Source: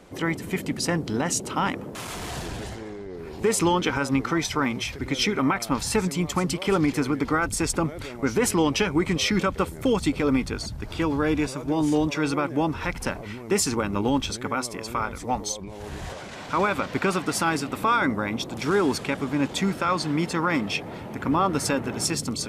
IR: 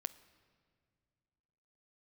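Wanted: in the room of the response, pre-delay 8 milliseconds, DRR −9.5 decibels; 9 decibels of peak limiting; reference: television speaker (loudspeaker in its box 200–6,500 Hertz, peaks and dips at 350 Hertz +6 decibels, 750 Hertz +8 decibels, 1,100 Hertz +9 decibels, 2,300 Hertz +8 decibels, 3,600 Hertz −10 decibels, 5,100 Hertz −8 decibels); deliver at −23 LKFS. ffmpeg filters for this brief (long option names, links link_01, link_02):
-filter_complex "[0:a]alimiter=limit=-20.5dB:level=0:latency=1,asplit=2[link_01][link_02];[1:a]atrim=start_sample=2205,adelay=8[link_03];[link_02][link_03]afir=irnorm=-1:irlink=0,volume=11.5dB[link_04];[link_01][link_04]amix=inputs=2:normalize=0,highpass=frequency=200:width=0.5412,highpass=frequency=200:width=1.3066,equalizer=frequency=350:width_type=q:width=4:gain=6,equalizer=frequency=750:width_type=q:width=4:gain=8,equalizer=frequency=1100:width_type=q:width=4:gain=9,equalizer=frequency=2300:width_type=q:width=4:gain=8,equalizer=frequency=3600:width_type=q:width=4:gain=-10,equalizer=frequency=5100:width_type=q:width=4:gain=-8,lowpass=frequency=6500:width=0.5412,lowpass=frequency=6500:width=1.3066,volume=-4.5dB"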